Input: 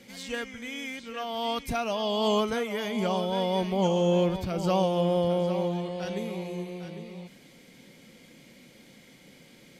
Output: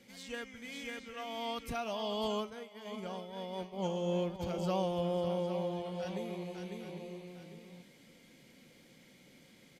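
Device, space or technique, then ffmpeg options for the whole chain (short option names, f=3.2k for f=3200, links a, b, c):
ducked delay: -filter_complex "[0:a]asplit=3[a][b][c];[b]adelay=550,volume=-3dB[d];[c]apad=whole_len=456322[e];[d][e]sidechaincompress=threshold=-31dB:ratio=8:attack=25:release=239[f];[a][f]amix=inputs=2:normalize=0,asplit=3[g][h][i];[g]afade=t=out:st=2.26:d=0.02[j];[h]agate=range=-33dB:threshold=-20dB:ratio=3:detection=peak,afade=t=in:st=2.26:d=0.02,afade=t=out:st=4.39:d=0.02[k];[i]afade=t=in:st=4.39:d=0.02[l];[j][k][l]amix=inputs=3:normalize=0,volume=-8.5dB"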